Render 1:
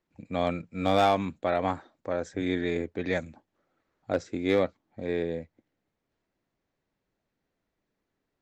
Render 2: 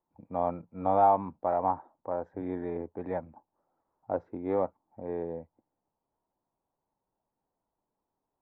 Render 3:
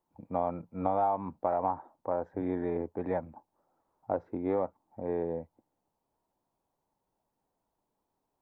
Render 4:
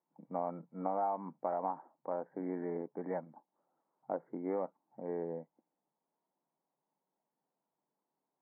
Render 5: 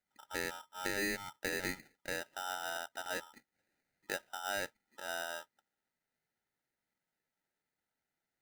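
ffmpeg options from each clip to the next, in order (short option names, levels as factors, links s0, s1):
-af "lowpass=f=910:t=q:w=4.9,volume=0.447"
-af "acompressor=threshold=0.0398:ratio=6,volume=1.41"
-af "afftfilt=real='re*between(b*sr/4096,130,2300)':imag='im*between(b*sr/4096,130,2300)':win_size=4096:overlap=0.75,volume=0.501"
-af "aeval=exprs='val(0)*sgn(sin(2*PI*1100*n/s))':c=same,volume=0.794"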